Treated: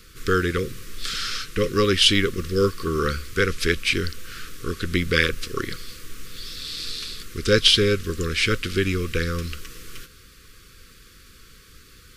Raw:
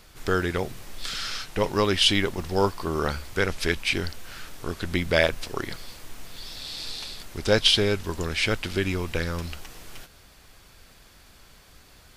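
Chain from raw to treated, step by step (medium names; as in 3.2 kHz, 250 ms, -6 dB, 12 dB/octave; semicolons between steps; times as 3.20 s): Chebyshev band-stop 520–1100 Hz, order 5; trim +4 dB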